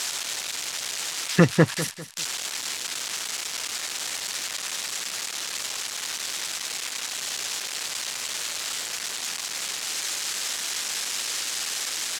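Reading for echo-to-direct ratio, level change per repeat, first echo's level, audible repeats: -13.0 dB, -9.0 dB, -13.5 dB, 3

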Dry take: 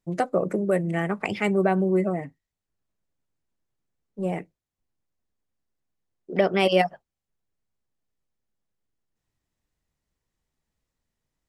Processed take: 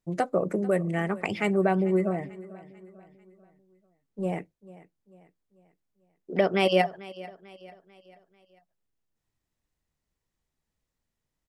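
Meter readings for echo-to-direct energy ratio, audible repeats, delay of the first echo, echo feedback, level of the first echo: -18.0 dB, 3, 443 ms, 45%, -19.0 dB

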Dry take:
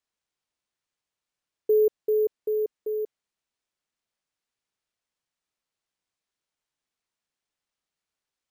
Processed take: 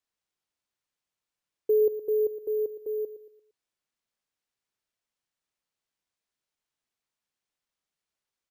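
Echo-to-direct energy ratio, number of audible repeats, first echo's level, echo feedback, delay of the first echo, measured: -12.5 dB, 3, -13.0 dB, 39%, 115 ms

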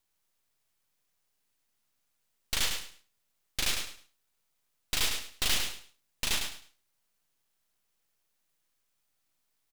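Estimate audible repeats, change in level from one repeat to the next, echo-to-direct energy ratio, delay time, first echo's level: 3, -13.0 dB, -6.0 dB, 104 ms, -6.0 dB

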